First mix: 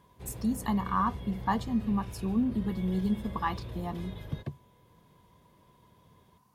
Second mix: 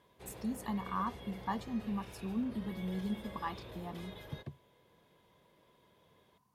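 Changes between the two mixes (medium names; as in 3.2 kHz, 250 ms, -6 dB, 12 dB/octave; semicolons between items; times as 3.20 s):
speech -8.0 dB; background: add tone controls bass -13 dB, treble 0 dB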